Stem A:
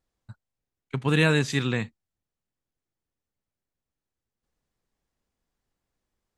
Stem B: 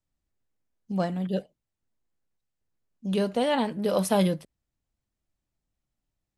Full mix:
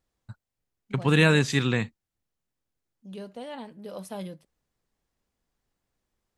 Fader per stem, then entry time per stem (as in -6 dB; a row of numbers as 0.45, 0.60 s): +1.5, -14.0 dB; 0.00, 0.00 s